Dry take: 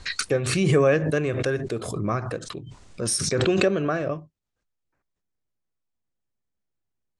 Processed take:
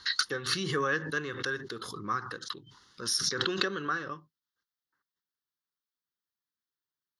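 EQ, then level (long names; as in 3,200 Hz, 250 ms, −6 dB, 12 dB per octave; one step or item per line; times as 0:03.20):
high-pass filter 1,100 Hz 6 dB per octave
phaser with its sweep stopped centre 2,400 Hz, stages 6
+2.5 dB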